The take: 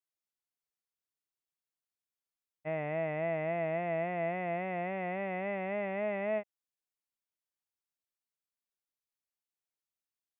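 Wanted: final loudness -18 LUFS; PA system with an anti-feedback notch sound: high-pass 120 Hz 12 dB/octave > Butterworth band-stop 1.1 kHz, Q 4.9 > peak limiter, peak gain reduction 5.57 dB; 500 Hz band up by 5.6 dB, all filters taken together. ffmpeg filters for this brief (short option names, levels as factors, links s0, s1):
-af "highpass=120,asuperstop=centerf=1100:order=8:qfactor=4.9,equalizer=f=500:t=o:g=8,volume=5.62,alimiter=limit=0.299:level=0:latency=1"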